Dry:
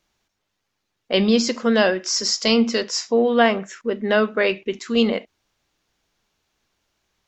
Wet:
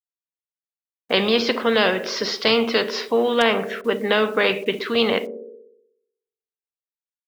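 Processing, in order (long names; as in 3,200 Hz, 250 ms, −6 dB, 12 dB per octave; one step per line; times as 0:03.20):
elliptic band-pass filter 110–3,600 Hz, stop band 40 dB
parametric band 450 Hz +12.5 dB 0.32 octaves
bit-depth reduction 10 bits, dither none
on a send: feedback echo with a band-pass in the loop 61 ms, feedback 64%, band-pass 370 Hz, level −16.5 dB
on the sum: every bin compressed towards the loudest bin 2 to 1
level −3.5 dB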